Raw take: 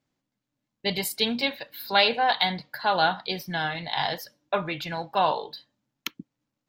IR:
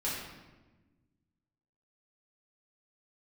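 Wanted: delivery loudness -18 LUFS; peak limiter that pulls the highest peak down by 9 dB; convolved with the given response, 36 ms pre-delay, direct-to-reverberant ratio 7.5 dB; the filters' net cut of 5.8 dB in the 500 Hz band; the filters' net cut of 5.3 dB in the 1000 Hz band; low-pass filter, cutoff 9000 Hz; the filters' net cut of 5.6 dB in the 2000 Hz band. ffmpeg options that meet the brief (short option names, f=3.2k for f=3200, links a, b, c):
-filter_complex "[0:a]lowpass=9k,equalizer=f=500:t=o:g=-6,equalizer=f=1k:t=o:g=-3.5,equalizer=f=2k:t=o:g=-6,alimiter=limit=-19dB:level=0:latency=1,asplit=2[a][b];[1:a]atrim=start_sample=2205,adelay=36[c];[b][c]afir=irnorm=-1:irlink=0,volume=-13dB[d];[a][d]amix=inputs=2:normalize=0,volume=13.5dB"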